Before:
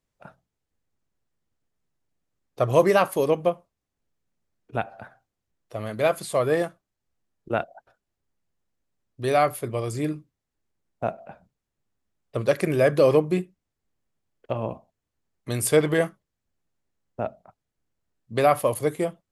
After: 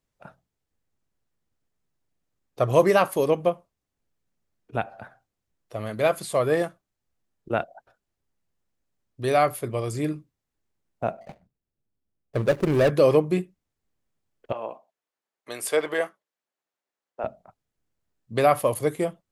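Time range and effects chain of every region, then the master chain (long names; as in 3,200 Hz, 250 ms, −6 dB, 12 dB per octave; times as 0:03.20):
0:11.21–0:12.90: running median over 41 samples + leveller curve on the samples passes 1
0:14.52–0:17.24: high-pass filter 530 Hz + high-shelf EQ 4,500 Hz −6.5 dB
whole clip: no processing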